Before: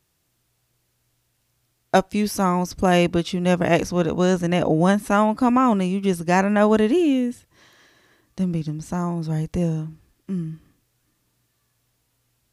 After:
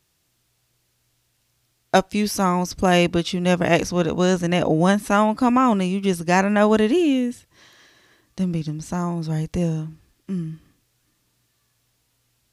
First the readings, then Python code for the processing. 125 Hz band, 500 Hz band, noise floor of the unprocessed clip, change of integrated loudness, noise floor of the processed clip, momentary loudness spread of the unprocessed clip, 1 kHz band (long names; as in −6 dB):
0.0 dB, 0.0 dB, −70 dBFS, +0.5 dB, −69 dBFS, 10 LU, +0.5 dB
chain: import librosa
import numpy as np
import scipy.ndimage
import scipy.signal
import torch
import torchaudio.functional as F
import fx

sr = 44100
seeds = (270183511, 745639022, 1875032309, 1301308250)

y = fx.peak_eq(x, sr, hz=4300.0, db=4.0, octaves=2.3)